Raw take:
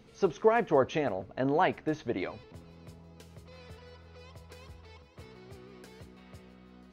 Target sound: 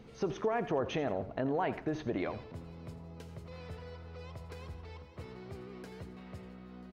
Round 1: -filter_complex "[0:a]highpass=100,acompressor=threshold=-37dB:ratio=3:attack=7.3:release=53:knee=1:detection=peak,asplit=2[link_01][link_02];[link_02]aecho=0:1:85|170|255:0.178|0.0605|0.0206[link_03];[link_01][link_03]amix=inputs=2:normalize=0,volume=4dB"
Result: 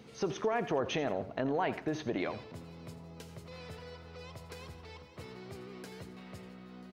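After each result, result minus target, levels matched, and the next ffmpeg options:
125 Hz band −3.5 dB; 4,000 Hz band +3.0 dB
-filter_complex "[0:a]acompressor=threshold=-37dB:ratio=3:attack=7.3:release=53:knee=1:detection=peak,asplit=2[link_01][link_02];[link_02]aecho=0:1:85|170|255:0.178|0.0605|0.0206[link_03];[link_01][link_03]amix=inputs=2:normalize=0,volume=4dB"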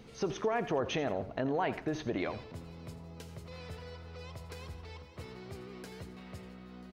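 4,000 Hz band +4.0 dB
-filter_complex "[0:a]acompressor=threshold=-37dB:ratio=3:attack=7.3:release=53:knee=1:detection=peak,highshelf=frequency=2800:gain=-8,asplit=2[link_01][link_02];[link_02]aecho=0:1:85|170|255:0.178|0.0605|0.0206[link_03];[link_01][link_03]amix=inputs=2:normalize=0,volume=4dB"

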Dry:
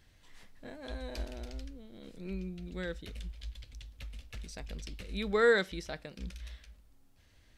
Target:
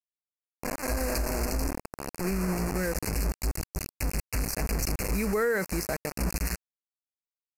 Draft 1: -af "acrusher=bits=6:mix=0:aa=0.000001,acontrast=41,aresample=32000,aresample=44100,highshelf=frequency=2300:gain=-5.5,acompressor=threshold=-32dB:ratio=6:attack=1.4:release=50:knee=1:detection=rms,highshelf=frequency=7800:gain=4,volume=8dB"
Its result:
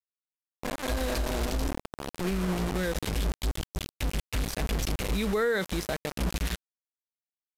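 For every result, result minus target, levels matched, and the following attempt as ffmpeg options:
4,000 Hz band +4.5 dB; 8,000 Hz band −4.0 dB
-af "acrusher=bits=6:mix=0:aa=0.000001,acontrast=41,aresample=32000,aresample=44100,asuperstop=centerf=3400:order=8:qfactor=2.1,highshelf=frequency=2300:gain=-5.5,acompressor=threshold=-32dB:ratio=6:attack=1.4:release=50:knee=1:detection=rms,highshelf=frequency=7800:gain=4,volume=8dB"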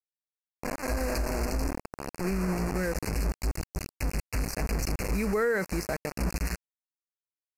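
8,000 Hz band −3.5 dB
-af "acrusher=bits=6:mix=0:aa=0.000001,acontrast=41,aresample=32000,aresample=44100,asuperstop=centerf=3400:order=8:qfactor=2.1,highshelf=frequency=2300:gain=-5.5,acompressor=threshold=-32dB:ratio=6:attack=1.4:release=50:knee=1:detection=rms,highshelf=frequency=7800:gain=13,volume=8dB"

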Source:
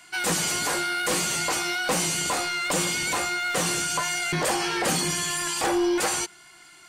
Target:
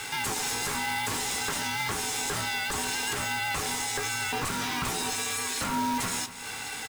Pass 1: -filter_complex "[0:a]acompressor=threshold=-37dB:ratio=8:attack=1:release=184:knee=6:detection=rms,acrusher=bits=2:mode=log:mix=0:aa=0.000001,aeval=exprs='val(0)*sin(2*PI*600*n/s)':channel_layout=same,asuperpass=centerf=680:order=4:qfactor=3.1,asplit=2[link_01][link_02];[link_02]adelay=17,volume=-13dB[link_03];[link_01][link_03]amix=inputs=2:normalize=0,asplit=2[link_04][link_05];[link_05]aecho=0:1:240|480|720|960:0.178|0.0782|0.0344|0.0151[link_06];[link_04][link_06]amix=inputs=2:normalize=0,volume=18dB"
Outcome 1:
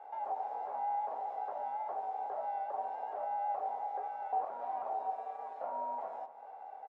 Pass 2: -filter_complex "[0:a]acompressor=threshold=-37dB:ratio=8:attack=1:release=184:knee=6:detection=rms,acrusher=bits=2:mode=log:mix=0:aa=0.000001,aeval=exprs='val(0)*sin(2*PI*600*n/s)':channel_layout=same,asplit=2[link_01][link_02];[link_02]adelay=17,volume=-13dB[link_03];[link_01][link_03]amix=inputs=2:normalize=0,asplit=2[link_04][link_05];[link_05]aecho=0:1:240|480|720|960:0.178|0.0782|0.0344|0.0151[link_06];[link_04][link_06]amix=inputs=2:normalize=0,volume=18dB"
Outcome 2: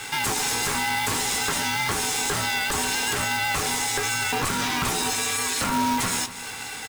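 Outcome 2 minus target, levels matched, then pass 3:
downward compressor: peak gain reduction −5.5 dB
-filter_complex "[0:a]acompressor=threshold=-43.5dB:ratio=8:attack=1:release=184:knee=6:detection=rms,acrusher=bits=2:mode=log:mix=0:aa=0.000001,aeval=exprs='val(0)*sin(2*PI*600*n/s)':channel_layout=same,asplit=2[link_01][link_02];[link_02]adelay=17,volume=-13dB[link_03];[link_01][link_03]amix=inputs=2:normalize=0,asplit=2[link_04][link_05];[link_05]aecho=0:1:240|480|720|960:0.178|0.0782|0.0344|0.0151[link_06];[link_04][link_06]amix=inputs=2:normalize=0,volume=18dB"

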